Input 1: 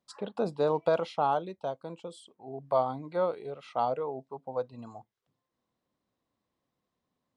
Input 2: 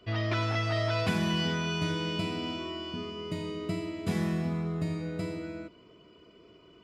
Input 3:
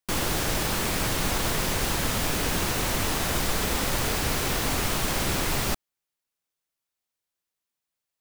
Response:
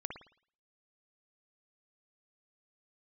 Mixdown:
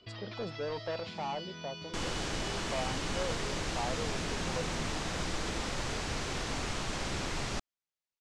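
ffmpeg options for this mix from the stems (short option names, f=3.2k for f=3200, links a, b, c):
-filter_complex "[0:a]asoftclip=type=tanh:threshold=-27dB,volume=-5dB[a];[1:a]equalizer=f=4.3k:w=1.2:g=11.5,acompressor=threshold=-38dB:ratio=5,volume=-5.5dB[b];[2:a]adelay=1850,volume=-8.5dB[c];[a][b][c]amix=inputs=3:normalize=0,lowpass=f=7.5k:w=0.5412,lowpass=f=7.5k:w=1.3066"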